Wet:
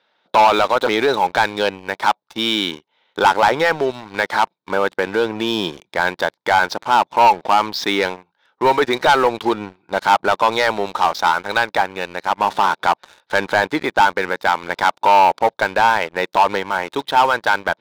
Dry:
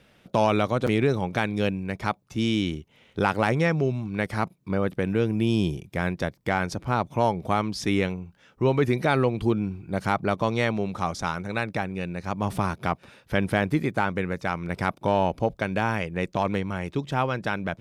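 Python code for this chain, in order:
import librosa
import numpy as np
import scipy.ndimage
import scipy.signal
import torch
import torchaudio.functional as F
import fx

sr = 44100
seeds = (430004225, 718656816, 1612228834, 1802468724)

y = fx.cabinet(x, sr, low_hz=470.0, low_slope=12, high_hz=5200.0, hz=(900.0, 1500.0, 2600.0, 3800.0), db=(10, 5, -4, 8))
y = fx.leveller(y, sr, passes=3)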